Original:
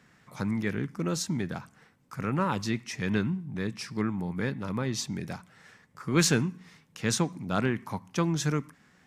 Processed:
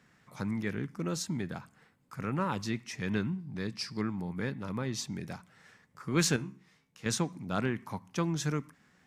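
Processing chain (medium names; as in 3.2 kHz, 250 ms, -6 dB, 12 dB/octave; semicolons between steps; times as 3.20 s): 1.25–2.15 s: band-stop 5.8 kHz, Q 8.8; 3.38–4.22 s: peaking EQ 4.7 kHz +11 dB 0.34 oct; 6.36–7.06 s: feedback comb 67 Hz, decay 0.31 s, harmonics all, mix 80%; trim -4 dB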